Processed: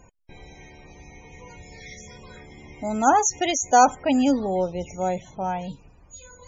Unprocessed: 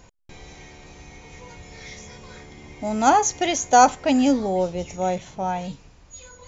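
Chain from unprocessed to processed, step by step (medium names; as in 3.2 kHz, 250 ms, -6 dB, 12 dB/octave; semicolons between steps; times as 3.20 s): 1.46–3.70 s: treble shelf 3.1 kHz +3 dB; loudest bins only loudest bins 64; trim -1.5 dB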